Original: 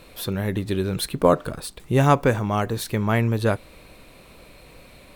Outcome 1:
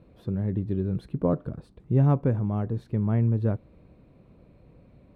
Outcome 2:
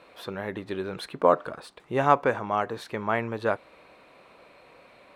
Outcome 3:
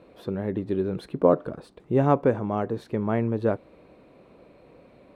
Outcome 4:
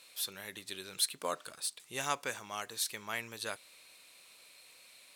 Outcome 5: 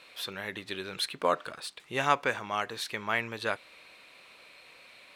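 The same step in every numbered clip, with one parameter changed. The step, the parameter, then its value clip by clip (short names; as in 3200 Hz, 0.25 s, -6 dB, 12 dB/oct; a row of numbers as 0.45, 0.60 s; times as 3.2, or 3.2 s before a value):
band-pass, frequency: 130, 1000, 370, 7300, 2600 Hz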